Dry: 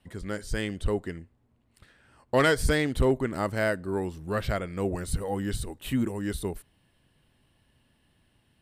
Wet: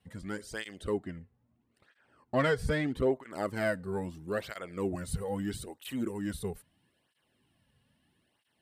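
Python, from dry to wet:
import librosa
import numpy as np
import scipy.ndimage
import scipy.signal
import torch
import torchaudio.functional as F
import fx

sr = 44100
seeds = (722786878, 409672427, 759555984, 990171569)

y = fx.high_shelf(x, sr, hz=4300.0, db=-11.5, at=(0.97, 3.31))
y = fx.flanger_cancel(y, sr, hz=0.77, depth_ms=3.4)
y = F.gain(torch.from_numpy(y), -2.0).numpy()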